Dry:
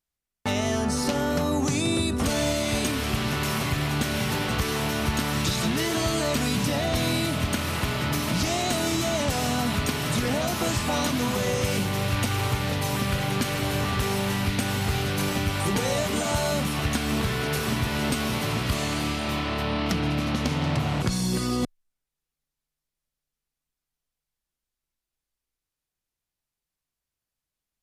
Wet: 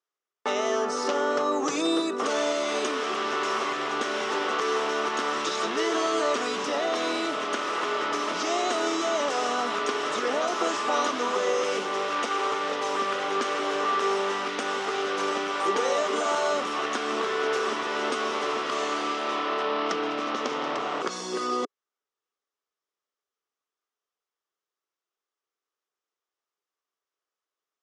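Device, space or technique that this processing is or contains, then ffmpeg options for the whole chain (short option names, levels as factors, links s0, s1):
phone speaker on a table: -filter_complex "[0:a]asettb=1/sr,asplit=3[s0][s1][s2];[s0]atrim=end=1.634[s3];[s1]atrim=start=1.63:end=2.1,asetpts=PTS-STARTPTS,afade=t=in:d=0.004:c=qsin,afade=t=out:st=0.466:d=0.004:c=qsin,aecho=1:1:6.3:0.68,atrim=end_sample=20727[s4];[s2]atrim=start=2.096[s5];[s3][s4]acrossfade=d=0.004:c1=hsin:c2=qsin[s6];[s6][s5]acrossfade=d=0.004:c1=qsin:c2=hsin,highpass=f=330:w=0.5412,highpass=f=330:w=1.3066,equalizer=f=420:t=q:w=4:g=7,equalizer=f=1200:t=q:w=4:g=9,equalizer=f=2400:t=q:w=4:g=-4,equalizer=f=4300:t=q:w=4:g=-7,lowpass=f=6400:w=0.5412,lowpass=f=6400:w=1.3066"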